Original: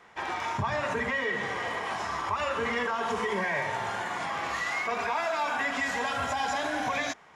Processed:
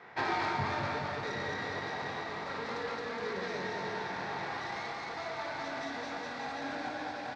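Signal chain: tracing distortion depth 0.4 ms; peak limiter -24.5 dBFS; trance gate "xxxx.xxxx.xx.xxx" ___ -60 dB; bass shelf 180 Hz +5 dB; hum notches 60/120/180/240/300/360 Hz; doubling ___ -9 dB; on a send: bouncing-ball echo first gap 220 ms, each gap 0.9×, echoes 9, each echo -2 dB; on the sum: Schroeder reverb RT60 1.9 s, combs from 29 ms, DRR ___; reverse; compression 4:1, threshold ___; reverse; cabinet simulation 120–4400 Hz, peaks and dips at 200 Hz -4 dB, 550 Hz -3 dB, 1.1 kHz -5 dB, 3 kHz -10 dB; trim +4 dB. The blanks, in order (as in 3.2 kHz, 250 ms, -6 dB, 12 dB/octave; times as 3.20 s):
61 bpm, 21 ms, 7 dB, -24 dBFS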